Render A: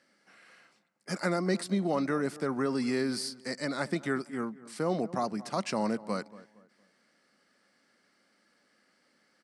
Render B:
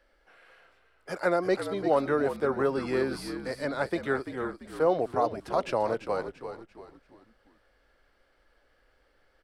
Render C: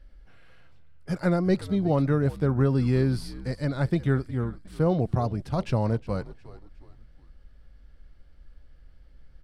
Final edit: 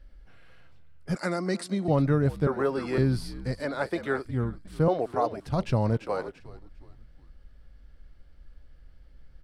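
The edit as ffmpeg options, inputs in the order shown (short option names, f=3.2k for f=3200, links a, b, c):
-filter_complex "[1:a]asplit=4[a][b][c][d];[2:a]asplit=6[e][f][g][h][i][j];[e]atrim=end=1.152[k];[0:a]atrim=start=1.148:end=1.882[l];[f]atrim=start=1.878:end=2.472[m];[a]atrim=start=2.468:end=2.982[n];[g]atrim=start=2.978:end=3.602[o];[b]atrim=start=3.598:end=4.252[p];[h]atrim=start=4.248:end=4.882[q];[c]atrim=start=4.878:end=5.462[r];[i]atrim=start=5.458:end=5.972[s];[d]atrim=start=5.968:end=6.402[t];[j]atrim=start=6.398[u];[k][l]acrossfade=d=0.004:c1=hsin:c2=hsin[v];[v][m]acrossfade=d=0.004:c1=hsin:c2=hsin[w];[w][n]acrossfade=d=0.004:c1=hsin:c2=hsin[x];[x][o]acrossfade=d=0.004:c1=hsin:c2=hsin[y];[y][p]acrossfade=d=0.004:c1=hsin:c2=hsin[z];[z][q]acrossfade=d=0.004:c1=hsin:c2=hsin[aa];[aa][r]acrossfade=d=0.004:c1=hsin:c2=hsin[ab];[ab][s]acrossfade=d=0.004:c1=hsin:c2=hsin[ac];[ac][t]acrossfade=d=0.004:c1=hsin:c2=hsin[ad];[ad][u]acrossfade=d=0.004:c1=hsin:c2=hsin"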